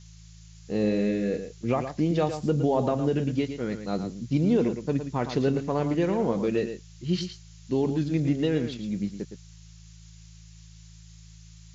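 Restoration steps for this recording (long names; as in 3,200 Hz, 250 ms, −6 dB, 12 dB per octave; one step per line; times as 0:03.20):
hum removal 54.5 Hz, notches 3
noise reduction from a noise print 23 dB
echo removal 113 ms −9 dB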